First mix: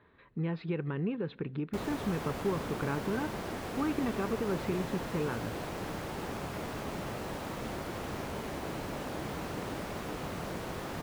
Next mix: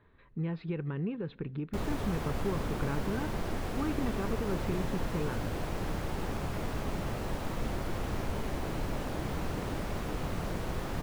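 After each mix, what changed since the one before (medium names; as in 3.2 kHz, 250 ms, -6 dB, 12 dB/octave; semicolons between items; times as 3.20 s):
speech -3.5 dB; master: remove high-pass 180 Hz 6 dB/octave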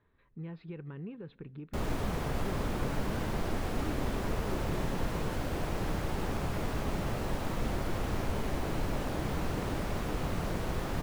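speech -8.0 dB; background: send +10.5 dB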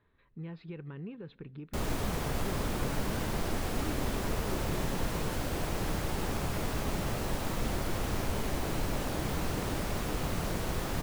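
master: add treble shelf 3.8 kHz +8 dB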